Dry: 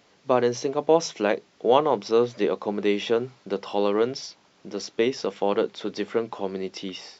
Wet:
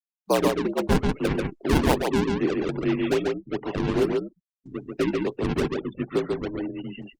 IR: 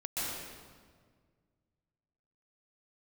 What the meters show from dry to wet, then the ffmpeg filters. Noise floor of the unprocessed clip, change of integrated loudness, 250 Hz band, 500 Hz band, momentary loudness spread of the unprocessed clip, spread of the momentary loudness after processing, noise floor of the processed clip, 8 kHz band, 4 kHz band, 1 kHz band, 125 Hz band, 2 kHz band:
-61 dBFS, -0.5 dB, +4.5 dB, -3.0 dB, 11 LU, 9 LU, under -85 dBFS, no reading, -2.5 dB, -3.5 dB, +9.5 dB, +2.0 dB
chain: -filter_complex "[0:a]highpass=f=220:t=q:w=0.5412,highpass=f=220:t=q:w=1.307,lowpass=f=2800:t=q:w=0.5176,lowpass=f=2800:t=q:w=0.7071,lowpass=f=2800:t=q:w=1.932,afreqshift=-66,acrossover=split=270|340|2000[s0][s1][s2][s3];[s2]acrusher=samples=41:mix=1:aa=0.000001:lfo=1:lforange=65.6:lforate=2.4[s4];[s0][s1][s4][s3]amix=inputs=4:normalize=0,aecho=1:1:140:0.708,afftfilt=real='re*gte(hypot(re,im),0.0126)':imag='im*gte(hypot(re,im),0.0126)':win_size=1024:overlap=0.75" -ar 48000 -c:a libopus -b:a 24k

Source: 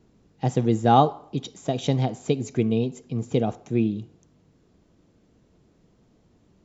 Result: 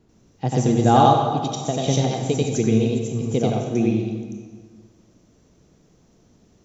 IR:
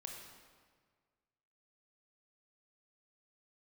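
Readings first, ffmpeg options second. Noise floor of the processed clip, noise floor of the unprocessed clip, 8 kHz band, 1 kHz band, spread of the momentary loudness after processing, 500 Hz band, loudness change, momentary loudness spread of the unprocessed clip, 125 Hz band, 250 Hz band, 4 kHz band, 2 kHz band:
-58 dBFS, -62 dBFS, no reading, +4.5 dB, 13 LU, +4.0 dB, +4.0 dB, 13 LU, +4.0 dB, +4.0 dB, +5.5 dB, +4.5 dB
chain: -filter_complex "[0:a]asplit=2[s0][s1];[s1]equalizer=f=5900:t=o:w=0.26:g=10[s2];[1:a]atrim=start_sample=2205,highshelf=f=4200:g=7.5,adelay=90[s3];[s2][s3]afir=irnorm=-1:irlink=0,volume=1.68[s4];[s0][s4]amix=inputs=2:normalize=0"

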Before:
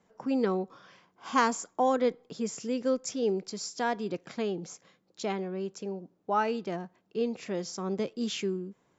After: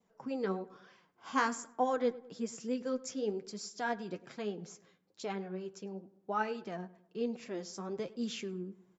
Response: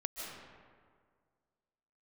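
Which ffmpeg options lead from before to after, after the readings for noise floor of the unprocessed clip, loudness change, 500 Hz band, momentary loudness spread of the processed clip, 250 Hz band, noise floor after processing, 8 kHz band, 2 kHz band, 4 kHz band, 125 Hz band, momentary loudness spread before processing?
-72 dBFS, -6.0 dB, -6.5 dB, 13 LU, -6.0 dB, -72 dBFS, no reading, -3.0 dB, -6.5 dB, -6.5 dB, 11 LU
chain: -filter_complex "[0:a]adynamicequalizer=threshold=0.00355:dfrequency=1600:dqfactor=3.7:tfrequency=1600:tqfactor=3.7:attack=5:release=100:ratio=0.375:range=2.5:mode=boostabove:tftype=bell,flanger=delay=3.8:depth=7.6:regen=34:speed=1.1:shape=triangular,asplit=2[s0][s1];[s1]adelay=103,lowpass=f=2000:p=1,volume=0.119,asplit=2[s2][s3];[s3]adelay=103,lowpass=f=2000:p=1,volume=0.46,asplit=2[s4][s5];[s5]adelay=103,lowpass=f=2000:p=1,volume=0.46,asplit=2[s6][s7];[s7]adelay=103,lowpass=f=2000:p=1,volume=0.46[s8];[s2][s4][s6][s8]amix=inputs=4:normalize=0[s9];[s0][s9]amix=inputs=2:normalize=0,volume=0.708"

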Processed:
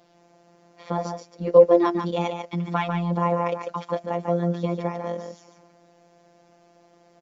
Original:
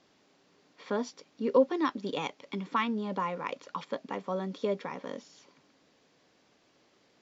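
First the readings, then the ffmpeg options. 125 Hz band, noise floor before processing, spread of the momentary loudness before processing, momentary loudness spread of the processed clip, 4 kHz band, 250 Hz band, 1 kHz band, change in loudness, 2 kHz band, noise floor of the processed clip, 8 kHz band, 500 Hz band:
+16.0 dB, -67 dBFS, 13 LU, 15 LU, +1.5 dB, +7.0 dB, +7.0 dB, +9.0 dB, +2.5 dB, -58 dBFS, no reading, +10.5 dB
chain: -filter_complex "[0:a]equalizer=f=680:w=2.3:g=12.5,acrossover=split=340|810[s0][s1][s2];[s0]acontrast=48[s3];[s3][s1][s2]amix=inputs=3:normalize=0,afftfilt=real='hypot(re,im)*cos(PI*b)':imag='0':win_size=1024:overlap=0.75,asplit=2[s4][s5];[s5]aecho=0:1:145:0.501[s6];[s4][s6]amix=inputs=2:normalize=0,volume=1.78"

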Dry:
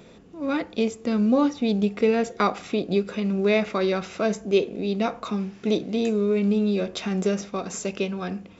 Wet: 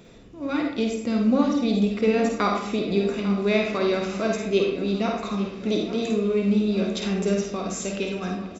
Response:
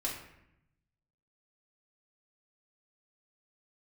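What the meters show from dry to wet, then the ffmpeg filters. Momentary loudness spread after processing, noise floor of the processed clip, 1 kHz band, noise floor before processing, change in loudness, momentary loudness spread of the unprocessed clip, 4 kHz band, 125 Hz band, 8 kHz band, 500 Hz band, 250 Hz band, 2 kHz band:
7 LU, -40 dBFS, 0.0 dB, -48 dBFS, +0.5 dB, 7 LU, +2.0 dB, +1.0 dB, no reading, 0.0 dB, +1.0 dB, +1.0 dB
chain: -filter_complex "[0:a]equalizer=f=760:t=o:w=3:g=-3,aecho=1:1:847|1694|2541|3388:0.2|0.0938|0.0441|0.0207,asplit=2[s0][s1];[1:a]atrim=start_sample=2205,lowshelf=f=67:g=7.5,adelay=50[s2];[s1][s2]afir=irnorm=-1:irlink=0,volume=0.596[s3];[s0][s3]amix=inputs=2:normalize=0"

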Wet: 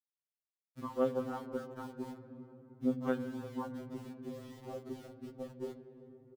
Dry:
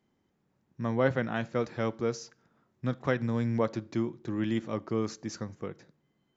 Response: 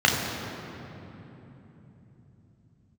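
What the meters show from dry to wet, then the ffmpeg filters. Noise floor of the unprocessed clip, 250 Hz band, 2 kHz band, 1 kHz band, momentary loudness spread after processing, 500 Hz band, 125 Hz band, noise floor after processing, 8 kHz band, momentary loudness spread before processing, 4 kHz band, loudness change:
-75 dBFS, -7.0 dB, -14.5 dB, -7.0 dB, 18 LU, -7.0 dB, -14.5 dB, under -85 dBFS, no reading, 11 LU, -13.0 dB, -8.0 dB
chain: -filter_complex "[0:a]equalizer=f=110:t=o:w=0.71:g=-9,aresample=8000,aresample=44100,afwtdn=0.0224,acompressor=threshold=0.00794:ratio=2.5,equalizer=f=125:t=o:w=0.33:g=-11,equalizer=f=630:t=o:w=0.33:g=-8,equalizer=f=2000:t=o:w=0.33:g=-12,aeval=exprs='val(0)*gte(abs(val(0)),0.00211)':c=same,asplit=2[s0][s1];[s1]adelay=349,lowpass=f=880:p=1,volume=0.158,asplit=2[s2][s3];[s3]adelay=349,lowpass=f=880:p=1,volume=0.53,asplit=2[s4][s5];[s5]adelay=349,lowpass=f=880:p=1,volume=0.53,asplit=2[s6][s7];[s7]adelay=349,lowpass=f=880:p=1,volume=0.53,asplit=2[s8][s9];[s9]adelay=349,lowpass=f=880:p=1,volume=0.53[s10];[s0][s2][s4][s6][s8][s10]amix=inputs=6:normalize=0,asplit=2[s11][s12];[1:a]atrim=start_sample=2205,lowpass=3900[s13];[s12][s13]afir=irnorm=-1:irlink=0,volume=0.0447[s14];[s11][s14]amix=inputs=2:normalize=0,acompressor=mode=upward:threshold=0.00224:ratio=2.5,afftfilt=real='re*2.45*eq(mod(b,6),0)':imag='im*2.45*eq(mod(b,6),0)':win_size=2048:overlap=0.75,volume=2.11"

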